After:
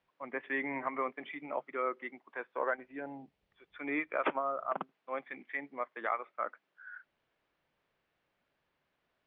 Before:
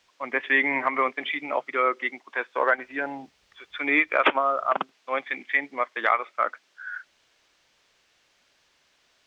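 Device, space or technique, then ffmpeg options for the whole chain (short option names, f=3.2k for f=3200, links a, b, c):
phone in a pocket: -filter_complex "[0:a]lowpass=3.3k,equalizer=f=160:t=o:w=0.64:g=6,highshelf=f=2k:g=-12,asettb=1/sr,asplit=3[a][b][c];[a]atrim=end=2.774[d];[b]atrim=start=2.77:end=3.76,asetpts=PTS-STARTPTS,afade=t=in:d=0.004:c=qsin,afade=t=out:st=0.986:d=0.004:c=qsin,equalizer=f=1.3k:t=o:w=1.2:g=-6[e];[c]atrim=start=3.756[f];[d][e]acrossfade=d=0.004:c1=hsin:c2=qsin[g];[g][f]acrossfade=d=0.004:c1=qsin:c2=hsin,volume=-8.5dB"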